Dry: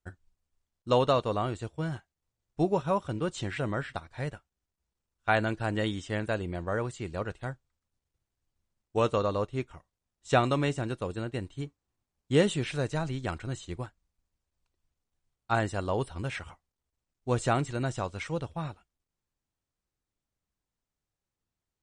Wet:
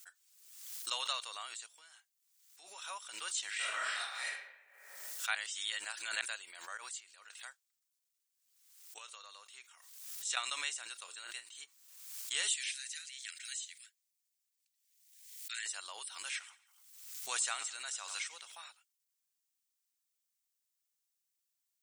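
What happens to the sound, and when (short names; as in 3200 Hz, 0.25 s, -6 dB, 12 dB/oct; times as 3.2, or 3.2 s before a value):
1.66–2.82 compressor, threshold -39 dBFS
3.56–4.25 reverb throw, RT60 1 s, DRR -9 dB
5.35–6.21 reverse
6.77–7.3 compressor 12:1, threshold -41 dBFS
8.98–10.37 compressor 4:1, threshold -34 dBFS
10.95–11.64 doubler 34 ms -11 dB
12.49–15.66 elliptic band-stop 200–1800 Hz
16.23–18.52 feedback echo 92 ms, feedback 40%, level -18 dB
whole clip: HPF 1200 Hz 12 dB/oct; differentiator; backwards sustainer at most 53 dB/s; gain +7 dB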